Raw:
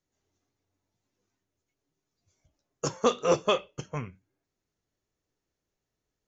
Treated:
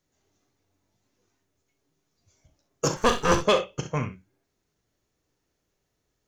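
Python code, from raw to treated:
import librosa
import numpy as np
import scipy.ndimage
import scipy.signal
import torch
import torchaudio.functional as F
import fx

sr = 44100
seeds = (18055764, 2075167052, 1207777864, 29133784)

p1 = fx.lower_of_two(x, sr, delay_ms=0.65, at=(2.96, 3.4))
p2 = 10.0 ** (-20.0 / 20.0) * np.tanh(p1 / 10.0 ** (-20.0 / 20.0))
p3 = p2 + fx.room_early_taps(p2, sr, ms=(38, 64), db=(-11.0, -11.5), dry=0)
y = F.gain(torch.from_numpy(p3), 7.0).numpy()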